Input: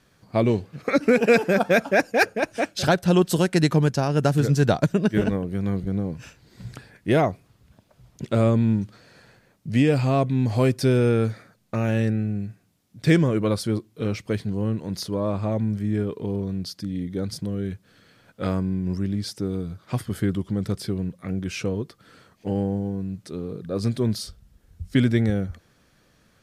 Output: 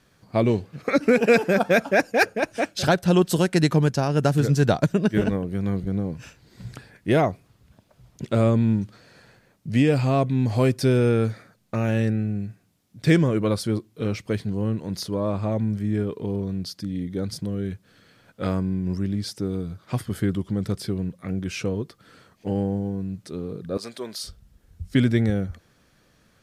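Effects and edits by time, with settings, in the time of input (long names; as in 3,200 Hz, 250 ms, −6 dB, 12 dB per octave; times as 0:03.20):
0:23.77–0:24.24: high-pass filter 560 Hz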